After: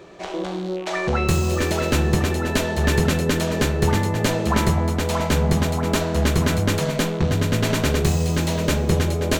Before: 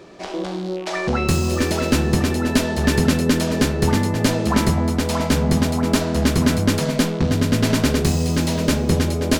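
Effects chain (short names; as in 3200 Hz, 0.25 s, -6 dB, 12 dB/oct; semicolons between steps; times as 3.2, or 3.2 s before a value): thirty-one-band EQ 250 Hz -10 dB, 5000 Hz -6 dB, 10000 Hz -5 dB; on a send: reverb RT60 1.4 s, pre-delay 6 ms, DRR 19 dB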